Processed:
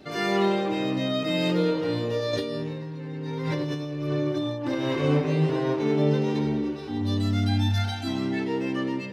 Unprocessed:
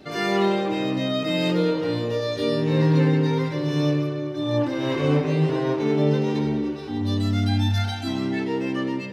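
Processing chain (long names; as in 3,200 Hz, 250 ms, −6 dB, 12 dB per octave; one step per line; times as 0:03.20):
0:02.33–0:04.75: compressor whose output falls as the input rises −28 dBFS, ratio −1
level −2 dB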